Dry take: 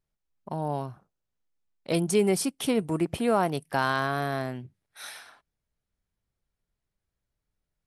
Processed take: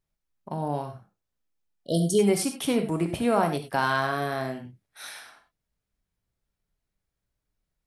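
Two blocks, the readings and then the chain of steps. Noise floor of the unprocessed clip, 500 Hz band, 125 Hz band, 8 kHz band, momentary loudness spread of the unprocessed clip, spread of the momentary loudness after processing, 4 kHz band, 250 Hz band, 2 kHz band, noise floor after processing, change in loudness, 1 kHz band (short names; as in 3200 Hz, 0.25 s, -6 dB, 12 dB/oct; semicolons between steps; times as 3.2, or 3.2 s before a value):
-85 dBFS, +1.0 dB, +1.5 dB, +1.0 dB, 18 LU, 18 LU, +1.0 dB, +1.5 dB, +1.5 dB, -84 dBFS, +1.5 dB, +1.5 dB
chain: spectral repair 1.7–2.17, 720–2900 Hz before; non-linear reverb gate 0.12 s flat, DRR 5.5 dB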